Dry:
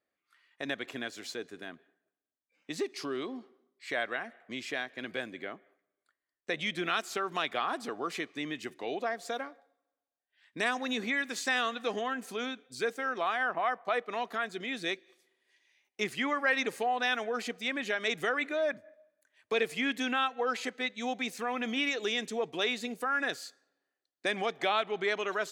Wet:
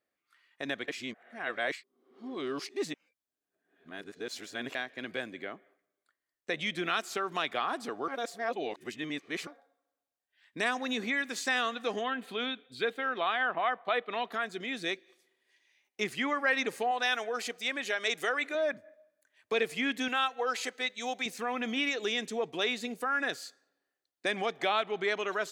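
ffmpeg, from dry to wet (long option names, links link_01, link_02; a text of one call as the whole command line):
ffmpeg -i in.wav -filter_complex "[0:a]asettb=1/sr,asplit=3[link_01][link_02][link_03];[link_01]atrim=end=12.044[link_04];[link_02]atrim=start=12.04:end=14.32,asetpts=PTS-STARTPTS,afade=type=in:duration=0.004:curve=qsin,afade=type=out:start_time=2.276:duration=0.004:curve=qsin,highshelf=frequency=4600:width_type=q:width=3:gain=-8[link_05];[link_03]atrim=start=14.316[link_06];[link_04][link_05]acrossfade=duration=0.004:curve1=hsin:curve2=qsin[link_07];[link_07][link_06]acrossfade=duration=0.004:curve1=qsin:curve2=hsin,asettb=1/sr,asplit=3[link_08][link_09][link_10];[link_08]atrim=end=16.914[link_11];[link_09]atrim=start=16.91:end=18.55,asetpts=PTS-STARTPTS,afade=type=in:duration=0.004:curve=qsin,afade=type=out:start_time=1.636:duration=0.004:curve=qsin,bass=frequency=250:gain=-12,treble=frequency=4000:gain=5[link_12];[link_10]atrim=start=18.546[link_13];[link_11][link_12]acrossfade=duration=0.004:curve1=hsin:curve2=qsin[link_14];[link_14][link_13]acrossfade=duration=0.004:curve1=qsin:curve2=hsin,asettb=1/sr,asplit=3[link_15][link_16][link_17];[link_15]atrim=end=20.084[link_18];[link_16]atrim=start=20.08:end=21.26,asetpts=PTS-STARTPTS,afade=type=in:duration=0.004:curve=qsin,afade=type=out:start_time=1.176:duration=0.004:curve=qsin,bass=frequency=250:gain=-13,treble=frequency=4000:gain=6[link_19];[link_17]atrim=start=21.256[link_20];[link_18][link_19]acrossfade=duration=0.004:curve1=hsin:curve2=qsin[link_21];[link_21][link_20]acrossfade=duration=0.004:curve1=qsin:curve2=hsin,asplit=5[link_22][link_23][link_24][link_25][link_26];[link_22]atrim=end=0.882[link_27];[link_23]atrim=start=0.878:end=4.752,asetpts=PTS-STARTPTS,areverse[link_28];[link_24]atrim=start=4.748:end=8.082[link_29];[link_25]atrim=start=8.078:end=9.472,asetpts=PTS-STARTPTS,areverse[link_30];[link_26]atrim=start=9.468[link_31];[link_27][link_28]acrossfade=duration=0.004:curve1=hsin:curve2=hsin[link_32];[link_32][link_29]acrossfade=duration=0.004:curve1=hsin:curve2=hsin[link_33];[link_33][link_30]acrossfade=duration=0.004:curve1=hsin:curve2=hsin[link_34];[link_34][link_31]acrossfade=duration=0.004:curve1=hsin:curve2=hsin" out.wav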